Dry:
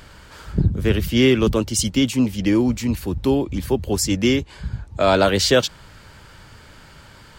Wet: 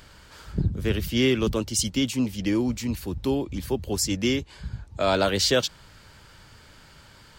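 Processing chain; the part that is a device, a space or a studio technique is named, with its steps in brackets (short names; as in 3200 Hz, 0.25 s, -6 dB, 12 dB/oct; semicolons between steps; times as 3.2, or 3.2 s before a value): presence and air boost (bell 4800 Hz +3.5 dB 1.5 oct; high shelf 12000 Hz +4.5 dB); gain -6.5 dB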